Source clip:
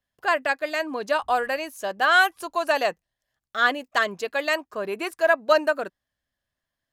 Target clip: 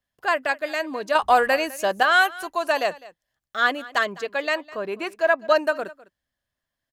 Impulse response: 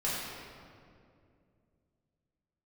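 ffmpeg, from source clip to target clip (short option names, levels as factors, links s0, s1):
-filter_complex "[0:a]asettb=1/sr,asplit=3[s0][s1][s2];[s0]atrim=end=1.154[s3];[s1]atrim=start=1.15:end=2.03,asetpts=PTS-STARTPTS,afade=t=in:d=0.004:c=qsin,afade=t=out:st=0.876:d=0.004:c=qsin,acontrast=58[s4];[s2]atrim=start=2.026[s5];[s3][s4]acrossfade=d=0.004:c1=hsin:c2=qsin[s6];[s6][s5]acrossfade=d=0.004:c1=qsin:c2=hsin,asettb=1/sr,asplit=3[s7][s8][s9];[s7]atrim=end=4.054[s10];[s8]atrim=start=4.05:end=5.56,asetpts=PTS-STARTPTS,afade=t=in:d=0.004:c=qsin,afade=t=out:st=1.506:d=0.004:c=qsin,equalizer=f=12000:w=0.74:g=-10[s11];[s9]atrim=start=5.556[s12];[s10][s11]acrossfade=d=0.004:c1=hsin:c2=qsin[s13];[s13][s12]acrossfade=d=0.004:c1=qsin:c2=hsin,aecho=1:1:205:0.1"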